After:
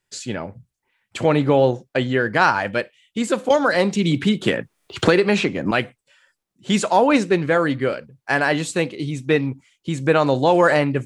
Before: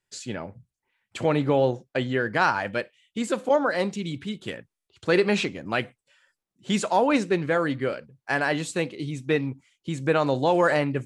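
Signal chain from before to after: 3.5–5.71 three-band squash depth 100%; gain +5.5 dB

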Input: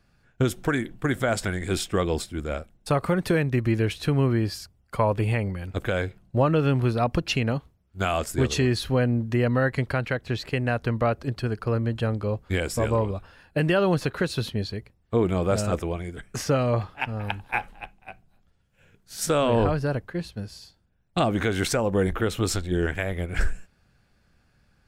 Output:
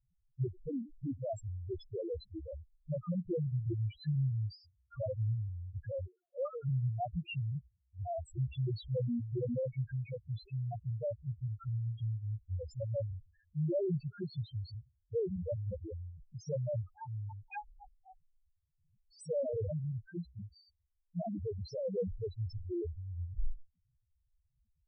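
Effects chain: 6.05–6.64 HPF 280 Hz -> 660 Hz 24 dB/oct; loudest bins only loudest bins 1; gain -3.5 dB

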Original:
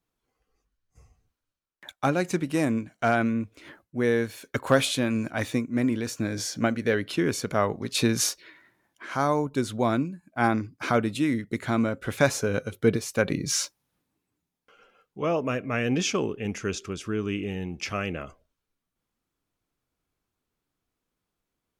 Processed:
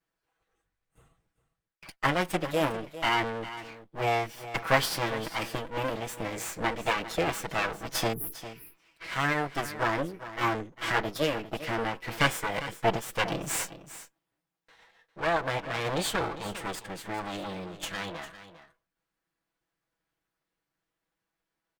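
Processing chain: minimum comb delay 6.1 ms; bell 1100 Hz +7 dB 2.3 oct; formant shift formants +5 st; spectral delete 8.13–8.37, 460–10000 Hz; on a send: echo 0.401 s -14 dB; on the sum: gain -4 dB

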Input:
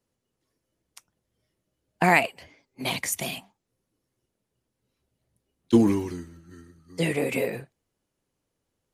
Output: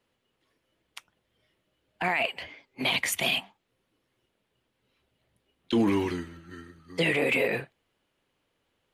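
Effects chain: EQ curve 140 Hz 0 dB, 3200 Hz +12 dB, 5800 Hz -2 dB; limiter -16 dBFS, peak gain reduction 20 dB

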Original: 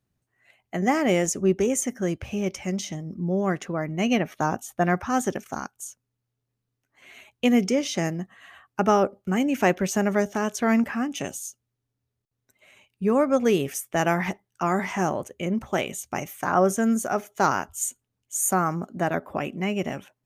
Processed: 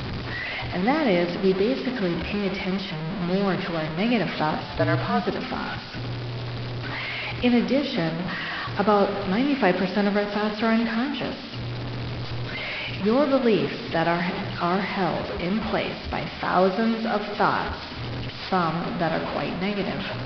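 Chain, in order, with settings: delta modulation 64 kbps, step -24 dBFS; on a send at -10 dB: reverb RT60 1.5 s, pre-delay 55 ms; on the sum: downsampling 11025 Hz; 4.6–5.26 frequency shift -53 Hz

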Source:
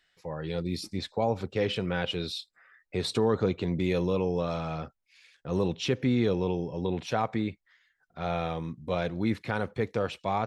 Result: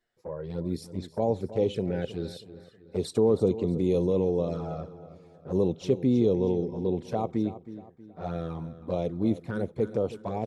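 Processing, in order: EQ curve 130 Hz 0 dB, 420 Hz +5 dB, 2600 Hz -10 dB, 9200 Hz +4 dB; envelope flanger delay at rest 8.6 ms, full sweep at -22.5 dBFS; feedback echo 0.319 s, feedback 41%, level -14 dB; mismatched tape noise reduction decoder only

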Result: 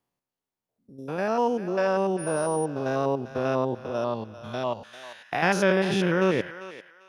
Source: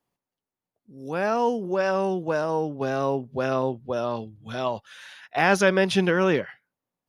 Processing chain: stepped spectrum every 0.1 s; thinning echo 0.396 s, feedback 28%, high-pass 870 Hz, level -11.5 dB; 2.18–2.64 whine 9600 Hz -37 dBFS

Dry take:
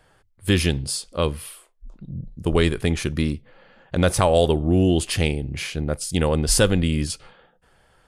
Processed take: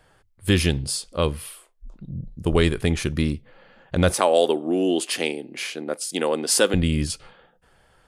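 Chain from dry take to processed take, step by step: 4.14–6.74 HPF 260 Hz 24 dB/oct

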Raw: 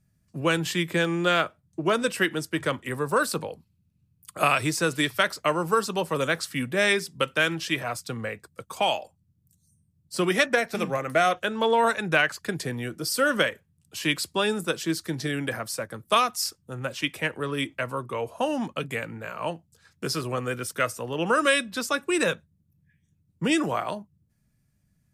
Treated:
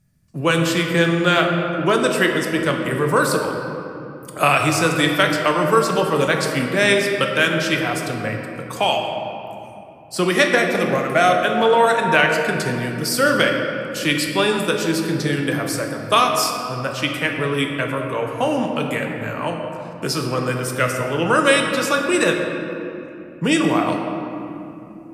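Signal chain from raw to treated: shoebox room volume 140 m³, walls hard, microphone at 0.34 m; gain +5 dB

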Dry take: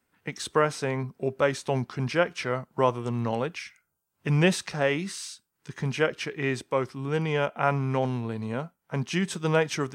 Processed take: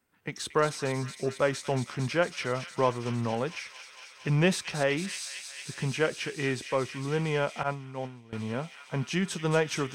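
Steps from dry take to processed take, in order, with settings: thin delay 0.228 s, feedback 85%, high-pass 2800 Hz, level -7 dB; 7.63–8.33 expander -17 dBFS; in parallel at -10.5 dB: soft clip -24 dBFS, distortion -8 dB; on the sum: gain -3.5 dB

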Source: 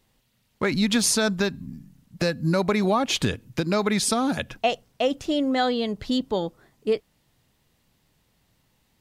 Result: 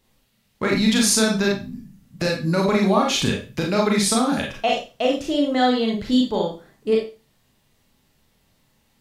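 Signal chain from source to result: Schroeder reverb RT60 0.32 s, combs from 28 ms, DRR -1 dB

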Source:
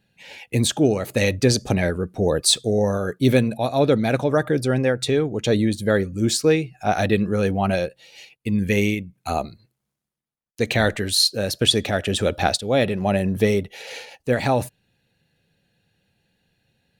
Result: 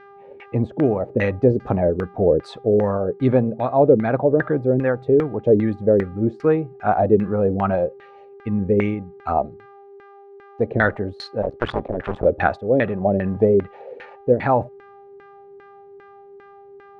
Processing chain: 11.42–12.25 cycle switcher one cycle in 2, muted; buzz 400 Hz, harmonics 15, -47 dBFS -6 dB/oct; LFO low-pass saw down 2.5 Hz 350–1800 Hz; gain -1 dB

